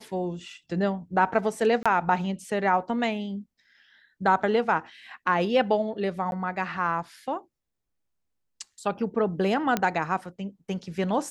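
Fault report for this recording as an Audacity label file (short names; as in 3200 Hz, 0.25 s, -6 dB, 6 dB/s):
1.830000	1.860000	gap 26 ms
6.310000	6.320000	gap 11 ms
9.770000	9.770000	pop -10 dBFS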